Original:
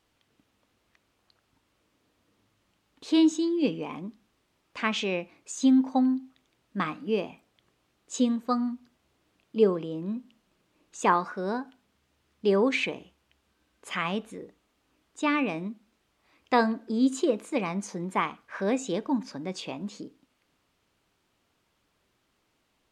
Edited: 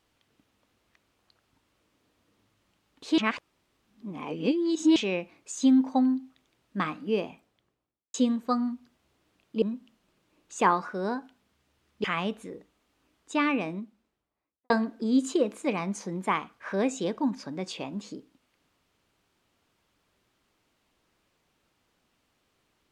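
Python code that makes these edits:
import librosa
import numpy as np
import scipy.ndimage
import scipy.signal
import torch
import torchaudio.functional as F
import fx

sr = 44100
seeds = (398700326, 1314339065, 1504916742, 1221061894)

y = fx.studio_fade_out(x, sr, start_s=7.24, length_s=0.9)
y = fx.studio_fade_out(y, sr, start_s=15.37, length_s=1.21)
y = fx.edit(y, sr, fx.reverse_span(start_s=3.18, length_s=1.78),
    fx.cut(start_s=9.62, length_s=0.43),
    fx.cut(start_s=12.47, length_s=1.45), tone=tone)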